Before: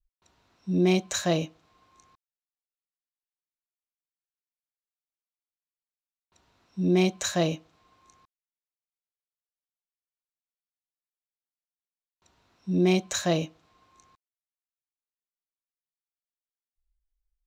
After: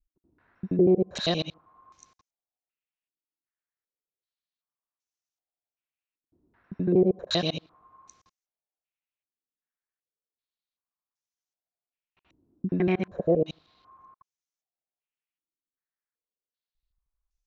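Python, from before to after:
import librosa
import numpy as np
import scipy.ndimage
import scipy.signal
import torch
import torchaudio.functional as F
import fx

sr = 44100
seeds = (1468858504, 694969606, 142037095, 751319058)

y = fx.local_reverse(x, sr, ms=79.0)
y = fx.filter_held_lowpass(y, sr, hz=2.6, low_hz=310.0, high_hz=6200.0)
y = y * 10.0 ** (-2.5 / 20.0)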